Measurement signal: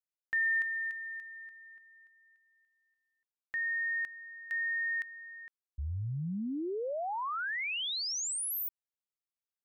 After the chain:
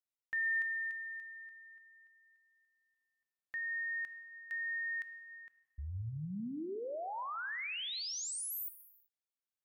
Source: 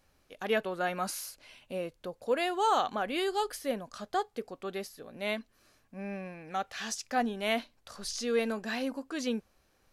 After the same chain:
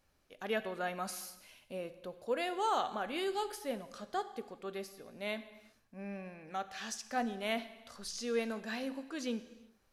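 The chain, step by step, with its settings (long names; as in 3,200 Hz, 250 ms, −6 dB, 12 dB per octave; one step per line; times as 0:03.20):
reverb whose tail is shaped and stops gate 410 ms falling, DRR 11.5 dB
level −5.5 dB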